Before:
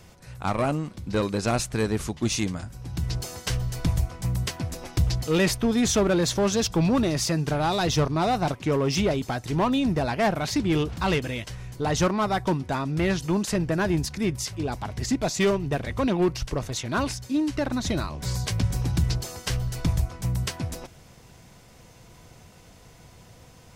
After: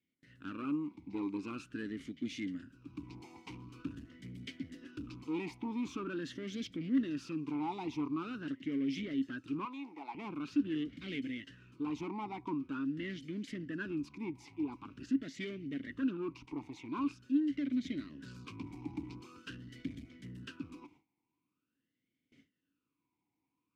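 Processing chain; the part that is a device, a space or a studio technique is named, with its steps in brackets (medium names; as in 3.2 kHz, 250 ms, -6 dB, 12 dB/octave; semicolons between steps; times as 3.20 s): talk box (valve stage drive 23 dB, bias 0.3; talking filter i-u 0.45 Hz); gate with hold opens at -55 dBFS; 9.65–10.15 s: high-pass 610 Hz 12 dB/octave; trim +1.5 dB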